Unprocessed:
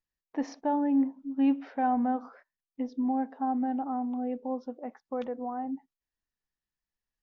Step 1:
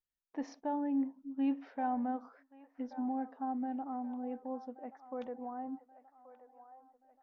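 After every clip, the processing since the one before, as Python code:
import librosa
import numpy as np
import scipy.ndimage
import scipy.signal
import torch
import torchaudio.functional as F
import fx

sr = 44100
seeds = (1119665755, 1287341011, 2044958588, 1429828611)

y = fx.echo_wet_bandpass(x, sr, ms=1129, feedback_pct=47, hz=1000.0, wet_db=-13.5)
y = F.gain(torch.from_numpy(y), -7.5).numpy()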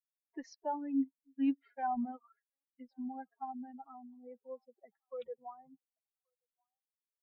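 y = fx.bin_expand(x, sr, power=3.0)
y = F.gain(torch.from_numpy(y), 3.5).numpy()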